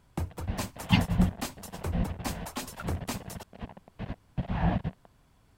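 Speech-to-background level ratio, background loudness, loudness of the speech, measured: 6.0 dB, -38.5 LUFS, -32.5 LUFS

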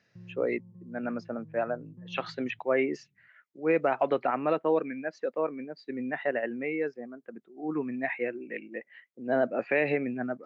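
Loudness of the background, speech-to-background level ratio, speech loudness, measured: -50.5 LUFS, 19.5 dB, -31.0 LUFS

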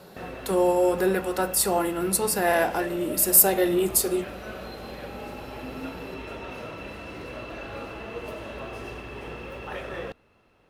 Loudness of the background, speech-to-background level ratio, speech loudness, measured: -38.0 LUFS, 16.0 dB, -22.0 LUFS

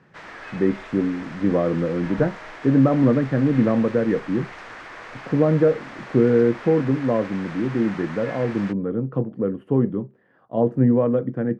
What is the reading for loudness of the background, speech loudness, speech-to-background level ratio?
-38.0 LUFS, -21.5 LUFS, 16.5 dB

